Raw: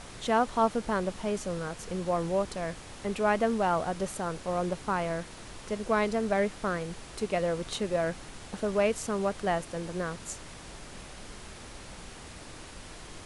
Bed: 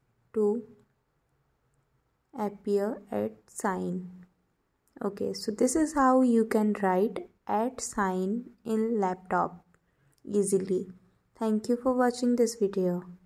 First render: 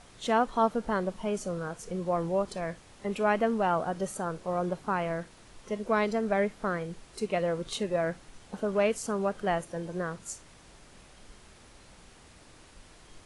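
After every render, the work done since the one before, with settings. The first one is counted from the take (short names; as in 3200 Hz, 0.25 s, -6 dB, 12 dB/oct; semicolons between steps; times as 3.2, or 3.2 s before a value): noise print and reduce 9 dB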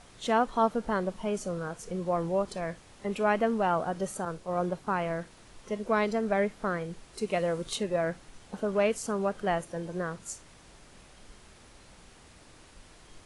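4.25–4.87 three-band expander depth 70%; 7.26–7.75 high shelf 5900 Hz -> 9000 Hz +8.5 dB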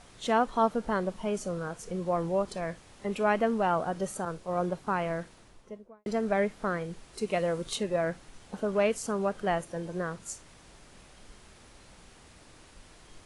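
5.21–6.06 studio fade out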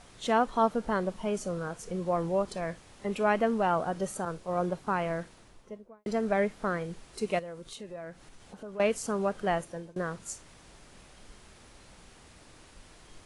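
7.39–8.8 compressor 2:1, threshold -49 dBFS; 9.52–9.96 fade out equal-power, to -23.5 dB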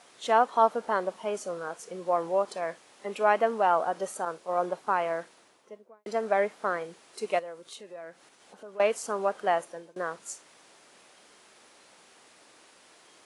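HPF 370 Hz 12 dB/oct; dynamic EQ 850 Hz, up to +5 dB, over -39 dBFS, Q 0.91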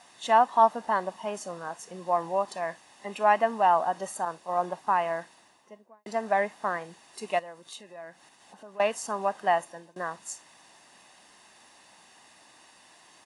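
comb 1.1 ms, depth 57%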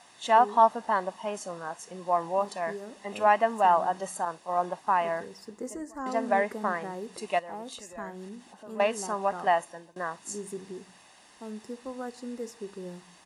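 add bed -12.5 dB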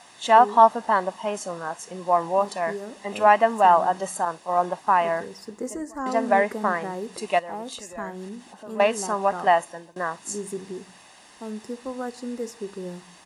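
gain +5.5 dB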